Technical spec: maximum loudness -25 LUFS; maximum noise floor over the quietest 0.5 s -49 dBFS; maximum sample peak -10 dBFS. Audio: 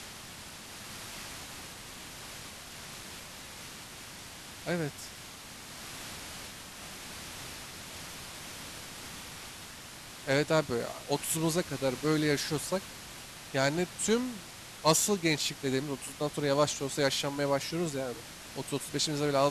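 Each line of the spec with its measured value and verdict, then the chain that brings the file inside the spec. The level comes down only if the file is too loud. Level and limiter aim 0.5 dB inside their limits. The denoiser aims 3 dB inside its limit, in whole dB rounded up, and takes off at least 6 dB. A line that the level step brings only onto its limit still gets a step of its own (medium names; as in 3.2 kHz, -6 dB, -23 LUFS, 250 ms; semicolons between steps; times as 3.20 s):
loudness -33.0 LUFS: pass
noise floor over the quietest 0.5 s -47 dBFS: fail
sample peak -13.5 dBFS: pass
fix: noise reduction 6 dB, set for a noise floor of -47 dBFS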